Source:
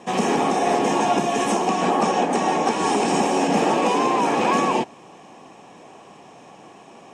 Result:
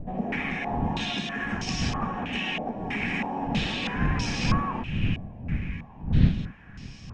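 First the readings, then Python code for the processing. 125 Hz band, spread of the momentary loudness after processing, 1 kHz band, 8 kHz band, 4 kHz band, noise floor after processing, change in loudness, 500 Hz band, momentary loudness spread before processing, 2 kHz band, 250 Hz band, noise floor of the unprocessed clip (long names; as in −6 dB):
+7.5 dB, 9 LU, −13.5 dB, −12.5 dB, −2.5 dB, −45 dBFS, −8.0 dB, −16.0 dB, 2 LU, −2.0 dB, −6.0 dB, −46 dBFS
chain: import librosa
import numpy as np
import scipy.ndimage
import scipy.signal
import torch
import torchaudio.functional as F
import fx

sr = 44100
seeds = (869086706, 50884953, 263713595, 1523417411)

y = fx.dmg_wind(x, sr, seeds[0], corner_hz=220.0, level_db=-24.0)
y = fx.band_shelf(y, sr, hz=630.0, db=-14.0, octaves=2.3)
y = fx.echo_wet_highpass(y, sr, ms=602, feedback_pct=66, hz=1400.0, wet_db=-14.0)
y = fx.filter_held_lowpass(y, sr, hz=3.1, low_hz=660.0, high_hz=5100.0)
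y = y * 10.0 ** (-5.0 / 20.0)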